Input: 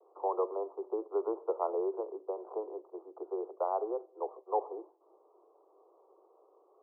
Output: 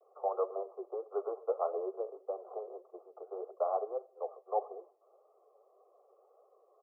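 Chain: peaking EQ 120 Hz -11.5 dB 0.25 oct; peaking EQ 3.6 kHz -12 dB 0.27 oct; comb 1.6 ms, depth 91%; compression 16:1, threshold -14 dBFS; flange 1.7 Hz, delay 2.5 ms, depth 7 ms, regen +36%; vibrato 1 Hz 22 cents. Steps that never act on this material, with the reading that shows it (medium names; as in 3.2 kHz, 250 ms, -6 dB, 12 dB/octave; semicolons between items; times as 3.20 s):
peaking EQ 120 Hz: input has nothing below 290 Hz; peaking EQ 3.6 kHz: input has nothing above 1.4 kHz; compression, threshold -14 dBFS: peak at its input -15.5 dBFS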